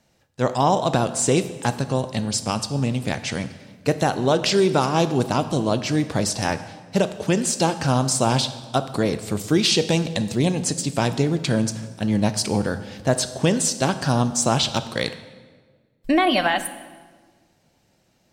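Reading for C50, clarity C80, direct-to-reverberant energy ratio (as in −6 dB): 12.5 dB, 14.0 dB, 11.0 dB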